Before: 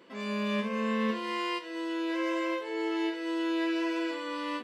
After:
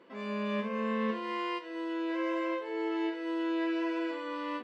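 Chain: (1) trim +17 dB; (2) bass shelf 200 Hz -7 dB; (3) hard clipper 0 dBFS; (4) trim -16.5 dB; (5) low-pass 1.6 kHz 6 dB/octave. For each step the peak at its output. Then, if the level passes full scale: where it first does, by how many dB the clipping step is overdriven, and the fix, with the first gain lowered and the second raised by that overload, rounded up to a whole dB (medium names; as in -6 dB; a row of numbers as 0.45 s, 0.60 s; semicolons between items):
-2.5 dBFS, -3.5 dBFS, -3.5 dBFS, -20.0 dBFS, -21.5 dBFS; nothing clips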